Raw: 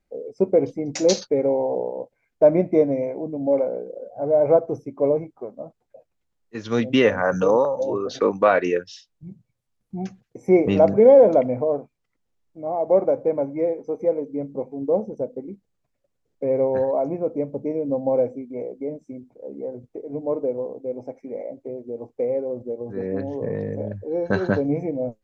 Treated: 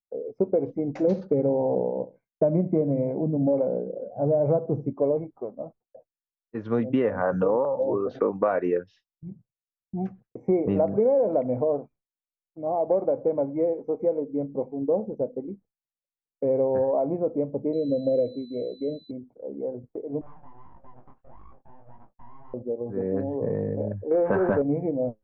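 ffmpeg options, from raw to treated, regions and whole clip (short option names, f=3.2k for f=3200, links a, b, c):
-filter_complex "[0:a]asettb=1/sr,asplit=3[a][b][c];[a]atrim=end=1.074[d];[b]atrim=start=1.07:end=4.93,asetpts=PTS-STARTPTS,afade=t=in:d=0.004:c=qsin,afade=t=out:st=3.856:d=0.004:c=qsin,equalizer=f=160:t=o:w=1.1:g=12.5,asplit=2[e][f];[f]adelay=69,lowpass=f=920:p=1,volume=-17dB,asplit=2[g][h];[h]adelay=69,lowpass=f=920:p=1,volume=0.26[i];[e][g][i]amix=inputs=3:normalize=0,atrim=end_sample=170226[j];[c]atrim=start=4.926[k];[d][j]acrossfade=d=0.004:c1=hsin:c2=qsin[l];[l][k]acrossfade=d=0.004:c1=qsin:c2=hsin,asettb=1/sr,asplit=3[m][n][o];[m]atrim=end=17.734[p];[n]atrim=start=17.73:end=19.11,asetpts=PTS-STARTPTS,afade=t=in:d=0.004:c=qsin,afade=t=out:st=1.376:d=0.004:c=qsin,acrusher=bits=8:mode=log:mix=0:aa=0.000001,aeval=exprs='val(0)+0.0251*sin(2*PI*4000*n/s)':c=same,asuperstop=centerf=1100:order=12:qfactor=0.95[q];[o]atrim=start=19.106[r];[p][q]acrossfade=d=0.004:c1=hsin:c2=qsin[s];[s][r]acrossfade=d=0.004:c1=qsin:c2=hsin,asettb=1/sr,asplit=3[t][u][v];[t]atrim=end=20.214[w];[u]atrim=start=20.21:end=22.54,asetpts=PTS-STARTPTS,afade=t=in:d=0.004:c=qsin,afade=t=out:st=2.326:d=0.004:c=qsin,acompressor=threshold=-40dB:ratio=6:attack=3.2:release=140:knee=1:detection=peak,aeval=exprs='abs(val(0))':c=same,flanger=delay=20:depth=7.2:speed=1.6[x];[v]atrim=start=22.536[y];[w][x]acrossfade=d=0.004:c1=hsin:c2=qsin[z];[z][y]acrossfade=d=0.004:c1=qsin:c2=hsin,asettb=1/sr,asplit=3[aa][ab][ac];[aa]atrim=end=24.114[ad];[ab]atrim=start=24.11:end=24.62,asetpts=PTS-STARTPTS,afade=t=in:d=0.004:c=qsin,afade=t=out:st=0.506:d=0.004:c=qsin,aeval=exprs='val(0)+0.5*0.0237*sgn(val(0))':c=same,lowpass=f=2.4k:w=0.5412,lowpass=f=2.4k:w=1.3066,asplit=2[ae][af];[af]highpass=f=720:p=1,volume=18dB,asoftclip=type=tanh:threshold=-7dB[ag];[ae][ag]amix=inputs=2:normalize=0,lowpass=f=1.5k:p=1,volume=-6dB[ah];[ac]atrim=start=24.616[ai];[ad][ah]acrossfade=d=0.004:c1=hsin:c2=qsin[aj];[aj][ai]acrossfade=d=0.004:c1=qsin:c2=hsin,lowpass=1.2k,agate=range=-33dB:threshold=-44dB:ratio=3:detection=peak,acompressor=threshold=-19dB:ratio=6"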